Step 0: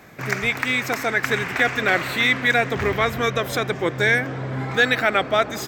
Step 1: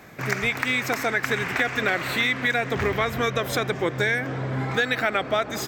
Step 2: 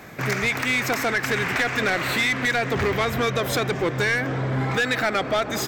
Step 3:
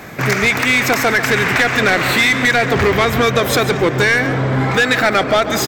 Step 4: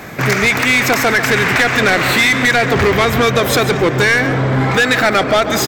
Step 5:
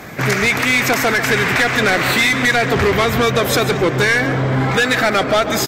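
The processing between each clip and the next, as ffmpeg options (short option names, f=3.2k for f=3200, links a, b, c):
-af "acompressor=threshold=-19dB:ratio=6"
-af "asoftclip=type=tanh:threshold=-21dB,volume=4.5dB"
-af "aecho=1:1:142:0.237,volume=8.5dB"
-af "asoftclip=type=tanh:threshold=-7.5dB,volume=2.5dB"
-af "volume=-2dB" -ar 48000 -c:a libvorbis -b:a 48k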